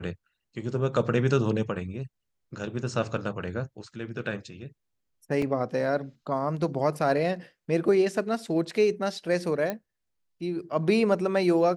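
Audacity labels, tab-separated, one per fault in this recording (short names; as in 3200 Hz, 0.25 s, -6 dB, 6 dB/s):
5.420000	5.420000	gap 3 ms
9.700000	9.700000	pop -16 dBFS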